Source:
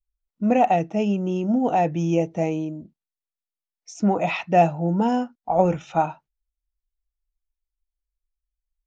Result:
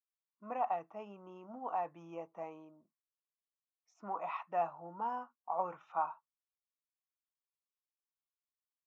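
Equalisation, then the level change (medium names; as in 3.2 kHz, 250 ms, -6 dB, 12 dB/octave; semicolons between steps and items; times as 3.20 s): band-pass filter 1.1 kHz, Q 8.8; +1.5 dB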